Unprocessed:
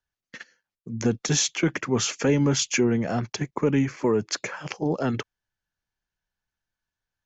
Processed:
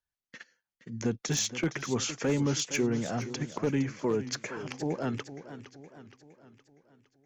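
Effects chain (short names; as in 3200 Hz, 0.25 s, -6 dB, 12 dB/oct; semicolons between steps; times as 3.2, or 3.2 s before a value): one-sided fold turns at -15.5 dBFS; warbling echo 0.466 s, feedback 50%, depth 123 cents, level -13 dB; gain -6.5 dB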